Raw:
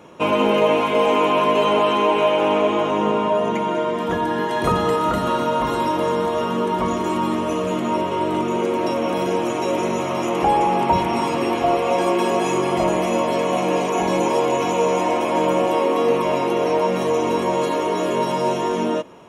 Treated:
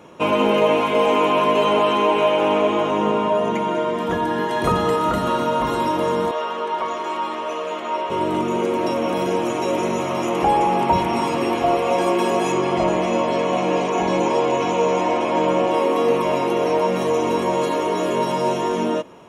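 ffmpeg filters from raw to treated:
-filter_complex "[0:a]asettb=1/sr,asplit=3[s0][s1][s2];[s0]atrim=end=6.314[s3];[s1]atrim=start=6.31:end=8.1,asetpts=PTS-STARTPTS,afade=t=in:d=0.004:c=qsin,afade=t=out:st=1.786:d=0.004:c=qsin,acrossover=split=440 5600:gain=0.0794 1 0.224[s4][s5][s6];[s4][s5][s6]amix=inputs=3:normalize=0[s7];[s2]atrim=start=8.096[s8];[s3][s7]acrossfade=d=0.004:c1=hsin:c2=qsin[s9];[s9][s8]acrossfade=d=0.004:c1=qsin:c2=hsin,asettb=1/sr,asplit=3[s10][s11][s12];[s10]atrim=end=12.524[s13];[s11]atrim=start=12.52:end=15.74,asetpts=PTS-STARTPTS,afade=t=in:d=0.004:c=qsin,afade=t=out:st=3.216:d=0.004:c=qsin,lowpass=6300[s14];[s12]atrim=start=15.736[s15];[s13][s14]acrossfade=d=0.004:c1=hsin:c2=qsin[s16];[s16][s15]acrossfade=d=0.004:c1=qsin:c2=hsin"

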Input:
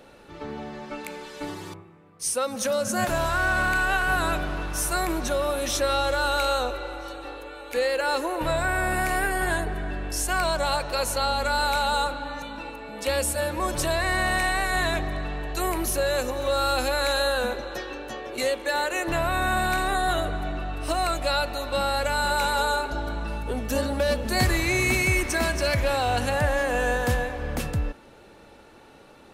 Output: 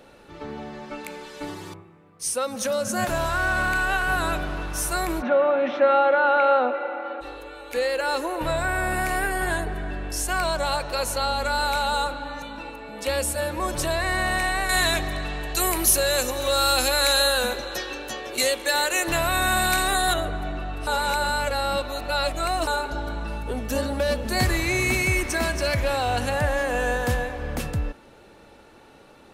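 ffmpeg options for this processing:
-filter_complex "[0:a]asplit=3[s0][s1][s2];[s0]afade=t=out:st=5.21:d=0.02[s3];[s1]highpass=f=210:w=0.5412,highpass=f=210:w=1.3066,equalizer=f=250:t=q:w=4:g=10,equalizer=f=390:t=q:w=4:g=-7,equalizer=f=550:t=q:w=4:g=7,equalizer=f=810:t=q:w=4:g=7,equalizer=f=1400:t=q:w=4:g=5,equalizer=f=2100:t=q:w=4:g=4,lowpass=f=2700:w=0.5412,lowpass=f=2700:w=1.3066,afade=t=in:st=5.21:d=0.02,afade=t=out:st=7.2:d=0.02[s4];[s2]afade=t=in:st=7.2:d=0.02[s5];[s3][s4][s5]amix=inputs=3:normalize=0,asettb=1/sr,asplit=3[s6][s7][s8];[s6]atrim=end=14.694[s9];[s7]atrim=start=14.69:end=20.14,asetpts=PTS-STARTPTS,afade=t=in:d=0.004:c=qsin,afade=t=out:st=5.446:d=0.004:c=qsin,highshelf=f=2700:g=11.5[s10];[s8]atrim=start=20.136[s11];[s9][s10]acrossfade=d=0.004:c1=hsin:c2=qsin[s12];[s12][s11]acrossfade=d=0.004:c1=qsin:c2=hsin,asplit=3[s13][s14][s15];[s13]atrim=end=20.872[s16];[s14]atrim=start=20.868:end=22.672,asetpts=PTS-STARTPTS,areverse[s17];[s15]atrim=start=22.668[s18];[s16][s17]acrossfade=d=0.004:c1=hsin:c2=hsin[s19];[s19][s18]acrossfade=d=0.004:c1=hsin:c2=hsin"

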